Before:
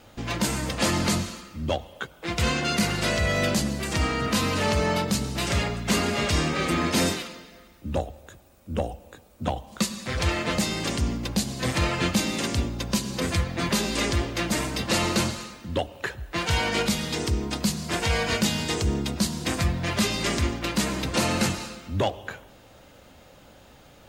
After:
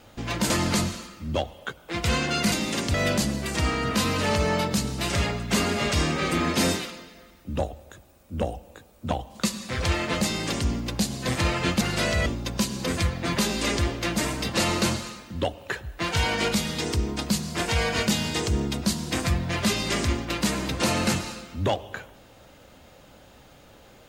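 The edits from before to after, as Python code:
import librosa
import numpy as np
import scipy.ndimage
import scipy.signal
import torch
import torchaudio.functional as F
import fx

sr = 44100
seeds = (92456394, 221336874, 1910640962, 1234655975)

y = fx.edit(x, sr, fx.cut(start_s=0.5, length_s=0.34),
    fx.swap(start_s=2.86, length_s=0.45, other_s=12.18, other_length_s=0.42), tone=tone)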